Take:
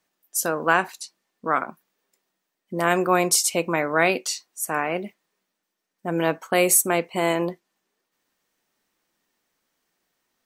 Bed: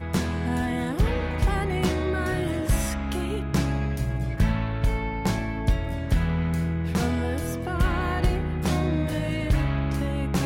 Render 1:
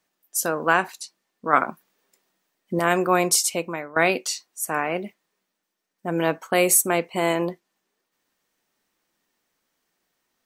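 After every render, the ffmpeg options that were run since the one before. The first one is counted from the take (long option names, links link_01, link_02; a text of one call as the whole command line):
ffmpeg -i in.wav -filter_complex "[0:a]asplit=4[link_01][link_02][link_03][link_04];[link_01]atrim=end=1.532[link_05];[link_02]atrim=start=1.528:end=2.792,asetpts=PTS-STARTPTS,volume=5dB[link_06];[link_03]atrim=start=2.788:end=3.96,asetpts=PTS-STARTPTS,afade=type=out:start_time=0.612:duration=0.56:silence=0.11885[link_07];[link_04]atrim=start=3.96,asetpts=PTS-STARTPTS,afade=type=in:duration=0.004:curve=hsin:silence=0.11885[link_08];[link_05][link_06]acrossfade=duration=0.004:curve1=hsin:curve2=hsin[link_09];[link_07][link_08]concat=n=2:v=0:a=1[link_10];[link_09][link_10]acrossfade=duration=0.004:curve1=hsin:curve2=hsin" out.wav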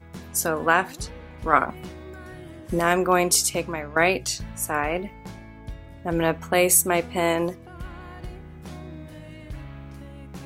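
ffmpeg -i in.wav -i bed.wav -filter_complex "[1:a]volume=-14.5dB[link_01];[0:a][link_01]amix=inputs=2:normalize=0" out.wav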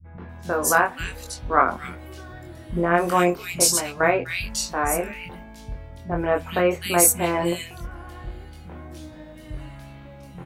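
ffmpeg -i in.wav -filter_complex "[0:a]asplit=2[link_01][link_02];[link_02]adelay=23,volume=-3dB[link_03];[link_01][link_03]amix=inputs=2:normalize=0,acrossover=split=200|2300[link_04][link_05][link_06];[link_05]adelay=40[link_07];[link_06]adelay=290[link_08];[link_04][link_07][link_08]amix=inputs=3:normalize=0" out.wav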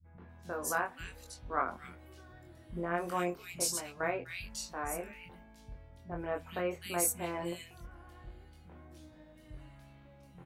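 ffmpeg -i in.wav -af "volume=-14.5dB" out.wav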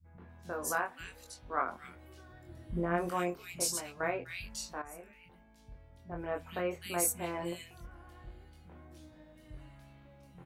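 ffmpeg -i in.wav -filter_complex "[0:a]asettb=1/sr,asplit=3[link_01][link_02][link_03];[link_01]atrim=end=0.754[link_04];[link_02]atrim=start=0.75:end=1.96,asetpts=PTS-STARTPTS,afade=type=in:duration=0.004:curve=qsin,afade=type=out:start_time=1.206:duration=0.004:curve=qsin,lowshelf=frequency=190:gain=-6.5[link_05];[link_03]atrim=start=1.956[link_06];[link_04][link_05]acrossfade=duration=0.004:curve1=hsin:curve2=qsin[link_07];[link_07][link_06]acrossfade=duration=0.004:curve1=qsin:curve2=hsin,asettb=1/sr,asplit=3[link_08][link_09][link_10];[link_08]atrim=end=2.484[link_11];[link_09]atrim=start=2.48:end=3.09,asetpts=PTS-STARTPTS,afade=type=in:duration=0.004:curve=qsin,afade=type=out:start_time=0.606:duration=0.004:curve=qsin,lowshelf=frequency=360:gain=7[link_12];[link_10]atrim=start=3.086[link_13];[link_11][link_12]acrossfade=duration=0.004:curve1=hsin:curve2=qsin[link_14];[link_14][link_13]acrossfade=duration=0.004:curve1=qsin:curve2=hsin,asplit=2[link_15][link_16];[link_15]atrim=end=4.82,asetpts=PTS-STARTPTS,afade=type=out:start_time=4.816:duration=0.004:curve=hsin:silence=0.223872[link_17];[link_16]atrim=start=4.82,asetpts=PTS-STARTPTS,afade=type=in:duration=1.59:silence=0.223872[link_18];[link_17][link_18]concat=n=2:v=0:a=1" out.wav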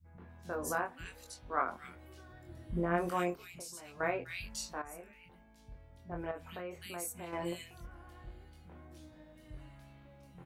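ffmpeg -i in.wav -filter_complex "[0:a]asettb=1/sr,asplit=3[link_01][link_02][link_03];[link_01]atrim=end=0.554[link_04];[link_02]atrim=start=0.55:end=1.06,asetpts=PTS-STARTPTS,afade=type=in:duration=0.004:curve=qsin,afade=type=out:start_time=0.506:duration=0.004:curve=qsin,tiltshelf=frequency=640:gain=4.5[link_05];[link_03]atrim=start=1.056[link_06];[link_04][link_05]acrossfade=duration=0.004:curve1=hsin:curve2=qsin[link_07];[link_07][link_06]acrossfade=duration=0.004:curve1=qsin:curve2=hsin,asplit=3[link_08][link_09][link_10];[link_08]afade=type=out:start_time=3.35:duration=0.02[link_11];[link_09]acompressor=threshold=-48dB:ratio=3:attack=3.2:release=140:knee=1:detection=peak,afade=type=in:start_time=3.35:duration=0.02,afade=type=out:start_time=3.97:duration=0.02[link_12];[link_10]afade=type=in:start_time=3.97:duration=0.02[link_13];[link_11][link_12][link_13]amix=inputs=3:normalize=0,asettb=1/sr,asplit=3[link_14][link_15][link_16];[link_14]atrim=end=6.314[link_17];[link_15]atrim=start=6.31:end=7.33,asetpts=PTS-STARTPTS,afade=type=in:duration=0.004:curve=qsin,afade=type=out:start_time=1.016:duration=0.004:curve=qsin,acompressor=threshold=-45dB:ratio=2:attack=3.2:release=140:knee=1:detection=peak[link_18];[link_16]atrim=start=7.326[link_19];[link_17][link_18]acrossfade=duration=0.004:curve1=hsin:curve2=qsin[link_20];[link_20][link_19]acrossfade=duration=0.004:curve1=qsin:curve2=hsin" out.wav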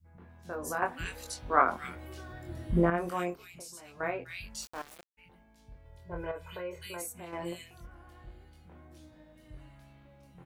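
ffmpeg -i in.wav -filter_complex "[0:a]asplit=3[link_01][link_02][link_03];[link_01]afade=type=out:start_time=4.61:duration=0.02[link_04];[link_02]aeval=exprs='val(0)*gte(abs(val(0)),0.0075)':channel_layout=same,afade=type=in:start_time=4.61:duration=0.02,afade=type=out:start_time=5.17:duration=0.02[link_05];[link_03]afade=type=in:start_time=5.17:duration=0.02[link_06];[link_04][link_05][link_06]amix=inputs=3:normalize=0,asettb=1/sr,asplit=3[link_07][link_08][link_09];[link_07]atrim=end=5.854[link_10];[link_08]atrim=start=5.85:end=7.02,asetpts=PTS-STARTPTS,afade=type=in:duration=0.004:curve=qsin,afade=type=out:start_time=1.166:duration=0.004:curve=qsin,aecho=1:1:2:1,atrim=end_sample=51597[link_11];[link_09]atrim=start=7.016[link_12];[link_10][link_11]acrossfade=duration=0.004:curve1=hsin:curve2=qsin[link_13];[link_13][link_12]acrossfade=duration=0.004:curve1=qsin:curve2=hsin,asplit=3[link_14][link_15][link_16];[link_14]atrim=end=0.822[link_17];[link_15]atrim=start=0.818:end=2.902,asetpts=PTS-STARTPTS,volume=9dB[link_18];[link_16]atrim=start=2.898[link_19];[link_17][link_18]acrossfade=duration=0.004:curve1=hsin:curve2=hsin[link_20];[link_20][link_19]acrossfade=duration=0.004:curve1=hsin:curve2=hsin" out.wav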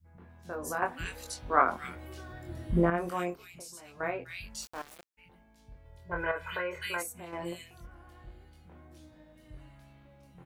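ffmpeg -i in.wav -filter_complex "[0:a]asettb=1/sr,asplit=3[link_01][link_02][link_03];[link_01]atrim=end=6.114[link_04];[link_02]atrim=start=6.11:end=7.03,asetpts=PTS-STARTPTS,afade=type=in:duration=0.004:curve=qsin,afade=type=out:start_time=0.916:duration=0.004:curve=qsin,equalizer=frequency=1600:width_type=o:width=1.6:gain=14.5[link_05];[link_03]atrim=start=7.026[link_06];[link_04][link_05]acrossfade=duration=0.004:curve1=hsin:curve2=qsin[link_07];[link_07][link_06]acrossfade=duration=0.004:curve1=qsin:curve2=hsin" out.wav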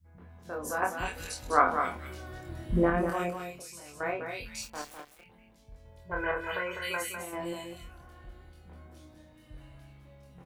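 ffmpeg -i in.wav -filter_complex "[0:a]asplit=2[link_01][link_02];[link_02]adelay=27,volume=-6dB[link_03];[link_01][link_03]amix=inputs=2:normalize=0,aecho=1:1:202:0.447" out.wav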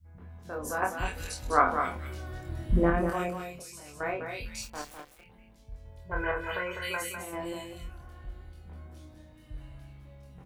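ffmpeg -i in.wav -af "lowshelf=frequency=110:gain=8.5,bandreject=frequency=173.5:width_type=h:width=4,bandreject=frequency=347:width_type=h:width=4,bandreject=frequency=520.5:width_type=h:width=4" out.wav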